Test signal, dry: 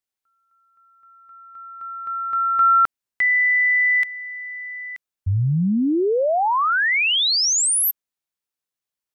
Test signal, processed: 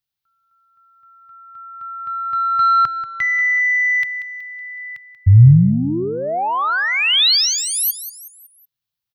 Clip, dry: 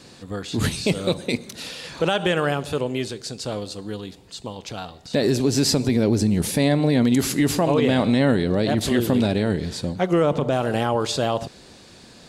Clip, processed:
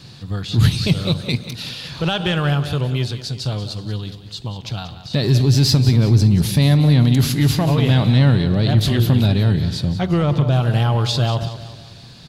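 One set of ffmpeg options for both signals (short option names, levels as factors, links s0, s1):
-af "acontrast=79,equalizer=f=125:t=o:w=1:g=10,equalizer=f=250:t=o:w=1:g=-7,equalizer=f=500:t=o:w=1:g=-9,equalizer=f=1000:t=o:w=1:g=-3,equalizer=f=2000:t=o:w=1:g=-5,equalizer=f=4000:t=o:w=1:g=4,equalizer=f=8000:t=o:w=1:g=-11,aecho=1:1:186|372|558|744:0.237|0.107|0.048|0.0216,volume=0.891"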